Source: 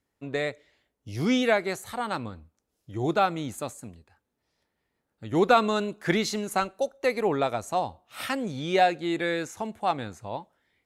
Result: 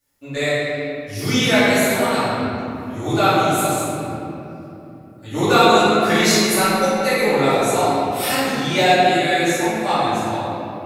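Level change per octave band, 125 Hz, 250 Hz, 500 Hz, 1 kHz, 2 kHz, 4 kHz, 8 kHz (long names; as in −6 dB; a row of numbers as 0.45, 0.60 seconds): +10.5, +9.5, +9.0, +10.0, +11.5, +14.0, +16.5 decibels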